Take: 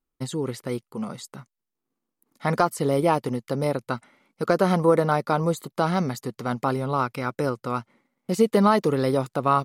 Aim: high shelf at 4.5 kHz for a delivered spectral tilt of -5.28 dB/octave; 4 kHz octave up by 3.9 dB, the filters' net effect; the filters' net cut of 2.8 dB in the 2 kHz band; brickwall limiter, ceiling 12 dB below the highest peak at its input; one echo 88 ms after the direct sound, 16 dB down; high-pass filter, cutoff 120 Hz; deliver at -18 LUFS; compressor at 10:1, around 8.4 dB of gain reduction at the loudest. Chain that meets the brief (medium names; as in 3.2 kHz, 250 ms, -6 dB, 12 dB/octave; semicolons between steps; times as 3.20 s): high-pass 120 Hz; peaking EQ 2 kHz -5.5 dB; peaking EQ 4 kHz +4 dB; treble shelf 4.5 kHz +4 dB; compression 10:1, threshold -22 dBFS; peak limiter -21 dBFS; delay 88 ms -16 dB; trim +15 dB